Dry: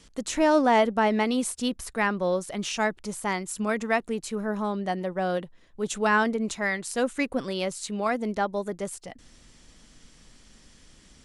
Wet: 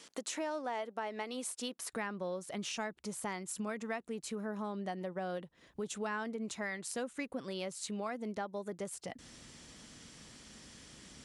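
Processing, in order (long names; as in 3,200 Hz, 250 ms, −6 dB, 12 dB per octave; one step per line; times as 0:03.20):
high-pass filter 360 Hz 12 dB per octave, from 0:01.93 83 Hz
downward compressor 4 to 1, threshold −41 dBFS, peak gain reduction 20 dB
level +2 dB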